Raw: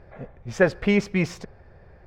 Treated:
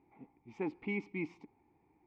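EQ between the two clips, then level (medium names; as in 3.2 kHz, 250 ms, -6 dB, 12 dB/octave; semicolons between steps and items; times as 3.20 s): vowel filter u; -2.0 dB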